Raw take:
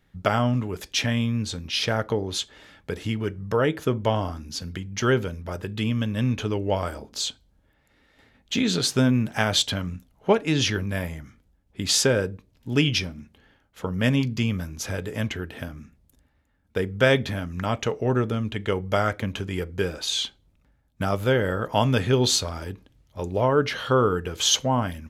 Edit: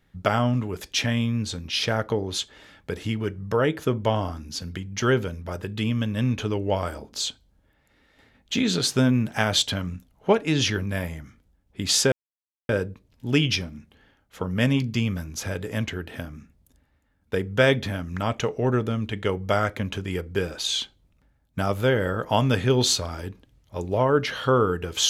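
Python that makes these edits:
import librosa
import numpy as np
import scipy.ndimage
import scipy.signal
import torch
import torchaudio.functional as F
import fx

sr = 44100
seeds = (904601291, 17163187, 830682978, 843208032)

y = fx.edit(x, sr, fx.insert_silence(at_s=12.12, length_s=0.57), tone=tone)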